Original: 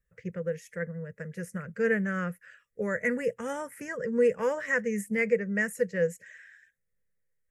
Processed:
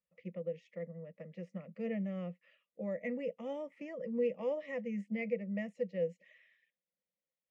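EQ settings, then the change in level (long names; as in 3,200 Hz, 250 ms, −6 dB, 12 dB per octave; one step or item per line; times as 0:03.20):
dynamic equaliser 1,300 Hz, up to −8 dB, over −43 dBFS, Q 0.98
loudspeaker in its box 230–3,200 Hz, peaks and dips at 250 Hz −6 dB, 930 Hz −9 dB, 1,500 Hz −9 dB
phaser with its sweep stopped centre 420 Hz, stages 6
+1.0 dB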